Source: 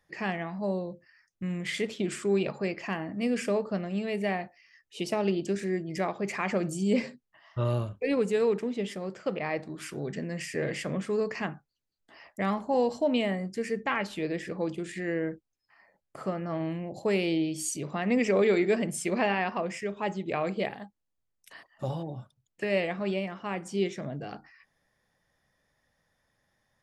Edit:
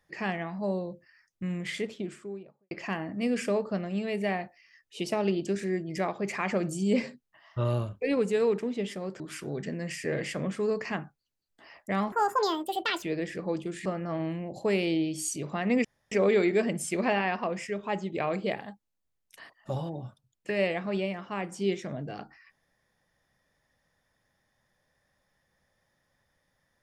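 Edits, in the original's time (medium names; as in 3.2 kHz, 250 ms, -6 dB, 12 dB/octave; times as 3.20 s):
1.47–2.71 s: studio fade out
9.20–9.70 s: delete
12.62–14.15 s: speed 169%
14.98–16.26 s: delete
18.25 s: insert room tone 0.27 s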